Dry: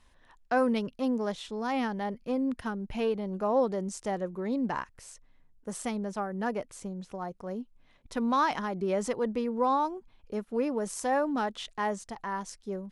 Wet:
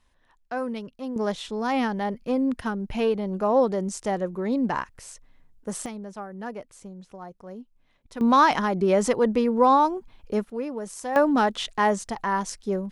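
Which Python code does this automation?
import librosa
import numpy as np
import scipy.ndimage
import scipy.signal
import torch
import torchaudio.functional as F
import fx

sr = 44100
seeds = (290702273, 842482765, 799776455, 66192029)

y = fx.gain(x, sr, db=fx.steps((0.0, -4.0), (1.16, 5.5), (5.86, -3.5), (8.21, 8.5), (10.5, -1.5), (11.16, 9.0)))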